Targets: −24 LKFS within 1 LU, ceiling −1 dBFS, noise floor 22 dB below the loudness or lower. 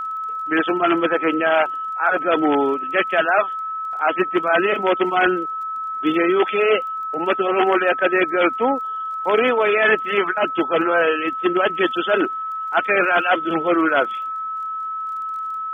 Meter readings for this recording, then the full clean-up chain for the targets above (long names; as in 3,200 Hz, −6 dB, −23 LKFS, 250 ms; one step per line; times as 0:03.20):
crackle rate 26 per second; interfering tone 1,300 Hz; level of the tone −24 dBFS; integrated loudness −19.5 LKFS; sample peak −4.0 dBFS; target loudness −24.0 LKFS
→ click removal
notch filter 1,300 Hz, Q 30
level −4.5 dB